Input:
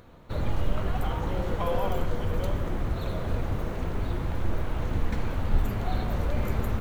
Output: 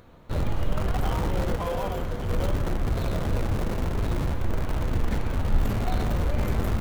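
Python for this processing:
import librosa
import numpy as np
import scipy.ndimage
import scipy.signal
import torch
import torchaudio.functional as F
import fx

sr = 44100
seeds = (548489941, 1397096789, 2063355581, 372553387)

p1 = fx.schmitt(x, sr, flips_db=-36.0)
p2 = x + F.gain(torch.from_numpy(p1), -7.0).numpy()
y = fx.tube_stage(p2, sr, drive_db=20.0, bias=0.75, at=(1.56, 2.29))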